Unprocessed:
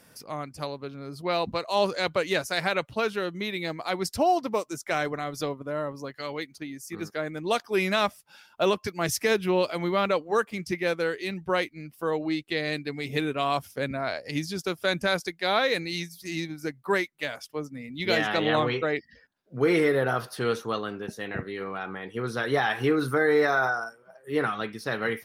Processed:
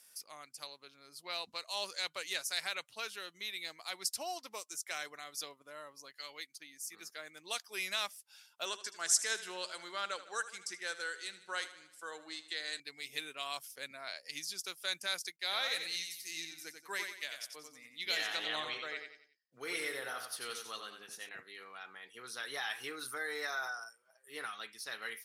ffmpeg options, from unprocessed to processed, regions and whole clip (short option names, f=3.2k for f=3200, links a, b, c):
-filter_complex "[0:a]asettb=1/sr,asplit=3[a][b][c];[a]atrim=end=8.654[d];[b]atrim=start=8.65:end=12.8,asetpts=PTS-STARTPTS,afade=t=in:d=0.004:c=qsin,afade=t=out:st=4.146:d=0.004:c=qsin,highpass=210,equalizer=f=1.5k:t=q:w=4:g=8,equalizer=f=2.4k:t=q:w=4:g=-7,equalizer=f=7.6k:t=q:w=4:g=9,lowpass=f=9.9k:w=0.5412,lowpass=f=9.9k:w=1.3066,aecho=1:1:77|154|231|308|385:0.188|0.104|0.057|0.0313|0.0172,atrim=end_sample=183015[e];[c]atrim=start=12.796[f];[d][e]acrossfade=d=0.004:c1=hsin:c2=qsin[g];[g][f]acrossfade=d=0.004:c1=qsin:c2=hsin,asettb=1/sr,asplit=3[h][i][j];[h]atrim=end=15.364[k];[i]atrim=start=15.36:end=21.29,asetpts=PTS-STARTPTS,afade=t=in:d=0.004:c=qsin,afade=t=out:st=5.926:d=0.004:c=qsin,agate=range=-33dB:threshold=-51dB:ratio=3:release=100:detection=peak,aecho=1:1:91|182|273|364:0.473|0.17|0.0613|0.0221,atrim=end_sample=261513[l];[j]atrim=start=21.286[m];[k][l]acrossfade=d=0.004:c1=hsin:c2=qsin[n];[n][m]acrossfade=d=0.004:c1=qsin:c2=hsin,lowpass=11k,aderivative,volume=1dB"